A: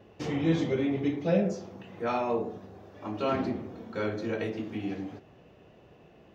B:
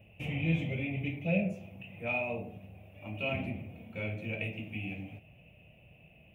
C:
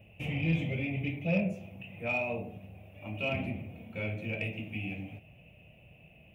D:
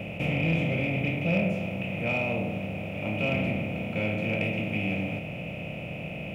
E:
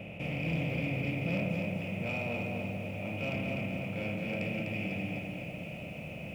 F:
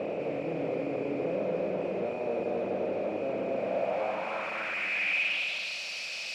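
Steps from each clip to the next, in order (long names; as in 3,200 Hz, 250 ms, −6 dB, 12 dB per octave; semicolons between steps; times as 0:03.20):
drawn EQ curve 100 Hz 0 dB, 160 Hz −2 dB, 400 Hz −19 dB, 610 Hz −6 dB, 1,100 Hz −20 dB, 1,700 Hz −18 dB, 2,500 Hz +9 dB, 4,500 Hz −27 dB, 6,600 Hz −19 dB, 9,900 Hz +3 dB; level +2.5 dB
soft clipping −19 dBFS, distortion −25 dB; level +1.5 dB
compressor on every frequency bin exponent 0.4
soft clipping −17 dBFS, distortion −25 dB; feedback echo at a low word length 250 ms, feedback 55%, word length 9 bits, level −4 dB; level −7.5 dB
mid-hump overdrive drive 40 dB, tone 2,400 Hz, clips at −21.5 dBFS; band-pass filter sweep 420 Hz → 4,700 Hz, 0:03.48–0:05.81; level +5.5 dB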